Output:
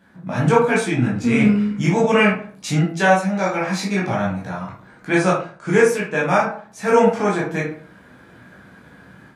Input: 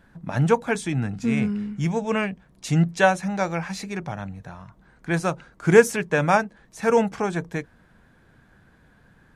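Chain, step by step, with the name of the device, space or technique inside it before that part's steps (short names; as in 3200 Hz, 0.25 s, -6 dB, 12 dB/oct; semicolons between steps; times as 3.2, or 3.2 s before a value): 5.09–5.88 elliptic low-pass 10000 Hz, stop band 40 dB; far laptop microphone (reverb RT60 0.45 s, pre-delay 12 ms, DRR -5.5 dB; HPF 120 Hz 12 dB/oct; AGC gain up to 7 dB); gain -1 dB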